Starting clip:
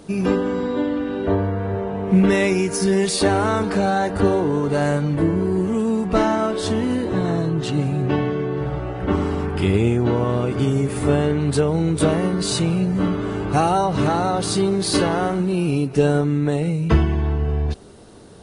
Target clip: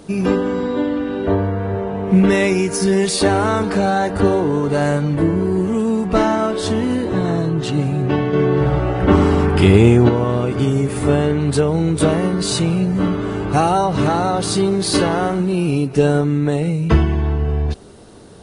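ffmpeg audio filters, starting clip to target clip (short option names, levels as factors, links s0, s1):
-filter_complex "[0:a]asettb=1/sr,asplit=3[s0][s1][s2];[s0]atrim=end=8.334[s3];[s1]atrim=start=8.33:end=10.09,asetpts=PTS-STARTPTS,afade=t=in:d=0.004:c=qsin,afade=t=out:st=1.756:d=0.004:c=qsin,acontrast=54[s4];[s2]atrim=start=10.086[s5];[s3][s4]acrossfade=d=0.004:c1=hsin:c2=qsin[s6];[s6][s5]acrossfade=d=0.004:c1=qsin:c2=hsin,volume=1.33"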